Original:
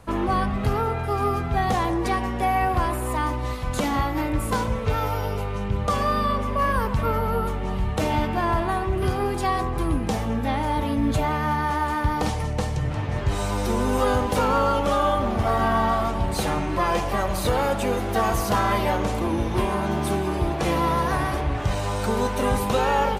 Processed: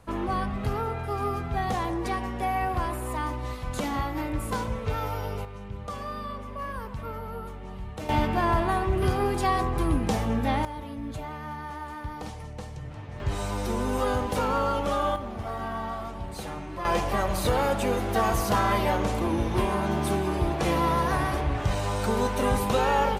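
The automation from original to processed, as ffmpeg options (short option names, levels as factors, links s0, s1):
-af "asetnsamples=n=441:p=0,asendcmd='5.45 volume volume -12.5dB;8.09 volume volume -1dB;10.65 volume volume -13dB;13.2 volume volume -5dB;15.16 volume volume -11.5dB;16.85 volume volume -2dB',volume=0.531"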